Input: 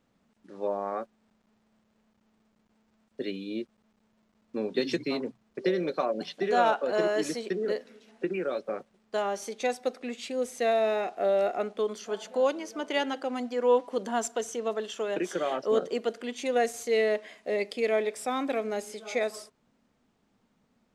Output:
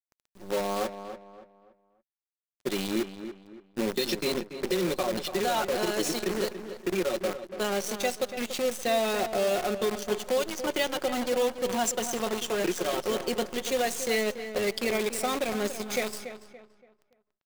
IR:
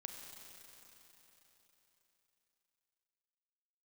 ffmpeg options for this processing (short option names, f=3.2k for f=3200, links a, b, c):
-filter_complex "[0:a]highpass=f=190:p=1,lowshelf=f=290:g=12,aecho=1:1:5.5:0.55,acrossover=split=2800[a][b];[a]alimiter=limit=-19.5dB:level=0:latency=1:release=291[c];[b]acontrast=53[d];[c][d]amix=inputs=2:normalize=0,acrusher=bits=6:dc=4:mix=0:aa=0.000001,atempo=1.2,asplit=2[e][f];[f]adelay=285,lowpass=f=2.6k:p=1,volume=-10dB,asplit=2[g][h];[h]adelay=285,lowpass=f=2.6k:p=1,volume=0.35,asplit=2[i][j];[j]adelay=285,lowpass=f=2.6k:p=1,volume=0.35,asplit=2[k][l];[l]adelay=285,lowpass=f=2.6k:p=1,volume=0.35[m];[e][g][i][k][m]amix=inputs=5:normalize=0"